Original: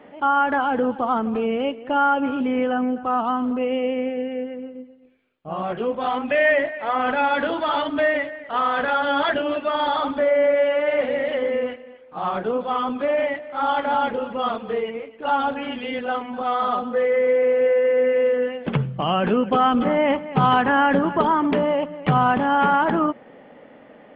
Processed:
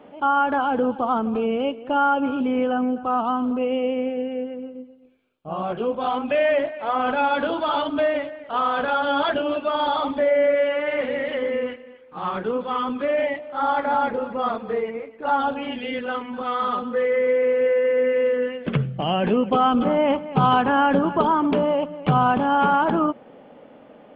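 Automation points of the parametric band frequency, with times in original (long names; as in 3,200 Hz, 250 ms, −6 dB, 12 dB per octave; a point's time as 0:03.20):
parametric band −10.5 dB 0.34 octaves
0:09.91 1,900 Hz
0:10.73 680 Hz
0:12.98 680 Hz
0:13.69 3,000 Hz
0:15.32 3,000 Hz
0:16.05 700 Hz
0:18.48 700 Hz
0:19.69 1,900 Hz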